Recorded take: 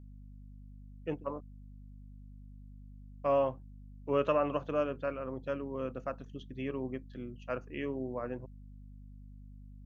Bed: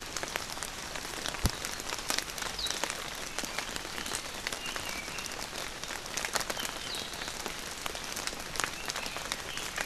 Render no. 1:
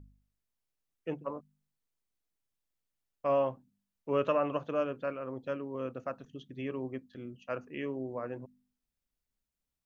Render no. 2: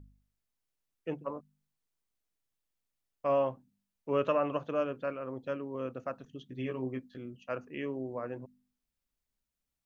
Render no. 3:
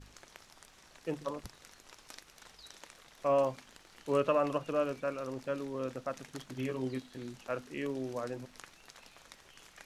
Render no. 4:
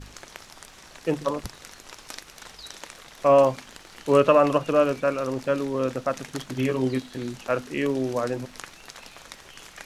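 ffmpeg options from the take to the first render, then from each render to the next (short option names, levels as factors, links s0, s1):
-af "bandreject=f=50:t=h:w=4,bandreject=f=100:t=h:w=4,bandreject=f=150:t=h:w=4,bandreject=f=200:t=h:w=4,bandreject=f=250:t=h:w=4"
-filter_complex "[0:a]asettb=1/sr,asplit=3[s0][s1][s2];[s0]atrim=end=6.474[s3];[s1]atrim=start=6.47:end=7.18,asetpts=PTS-STARTPTS,afade=t=in:d=0.004:c=qsin,afade=t=out:st=0.706:d=0.004:c=qsin,asplit=2[s4][s5];[s5]adelay=16,volume=0.631[s6];[s4][s6]amix=inputs=2:normalize=0,atrim=end_sample=31311[s7];[s2]atrim=start=7.176[s8];[s3][s7]acrossfade=d=0.004:c1=hsin:c2=qsin[s9];[s9][s8]acrossfade=d=0.004:c1=qsin:c2=hsin"
-filter_complex "[1:a]volume=0.106[s0];[0:a][s0]amix=inputs=2:normalize=0"
-af "volume=3.76"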